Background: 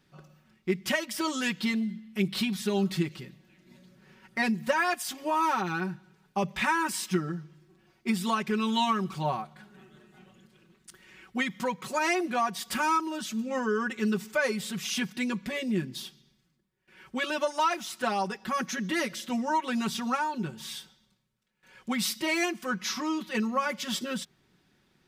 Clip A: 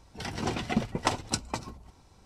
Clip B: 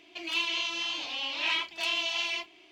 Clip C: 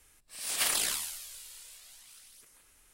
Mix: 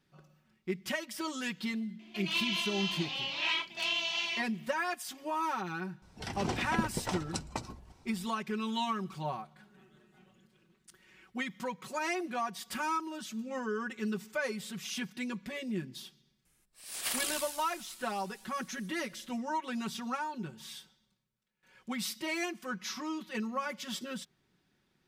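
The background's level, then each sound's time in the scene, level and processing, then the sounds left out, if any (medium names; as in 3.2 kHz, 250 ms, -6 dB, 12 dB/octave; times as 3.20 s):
background -7 dB
1.99 s: add B -3 dB + doubling 20 ms -12 dB
6.02 s: add A -3.5 dB + peak limiter -15.5 dBFS
16.45 s: add C -9.5 dB + level rider gain up to 4.5 dB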